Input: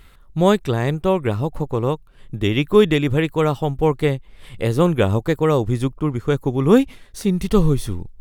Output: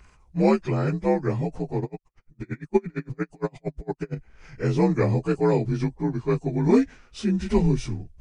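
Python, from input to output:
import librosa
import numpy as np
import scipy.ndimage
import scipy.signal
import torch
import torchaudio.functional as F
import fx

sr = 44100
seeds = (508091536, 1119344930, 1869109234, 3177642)

y = fx.partial_stretch(x, sr, pct=85)
y = fx.tremolo_db(y, sr, hz=8.7, depth_db=40, at=(1.8, 4.15), fade=0.02)
y = F.gain(torch.from_numpy(y), -3.0).numpy()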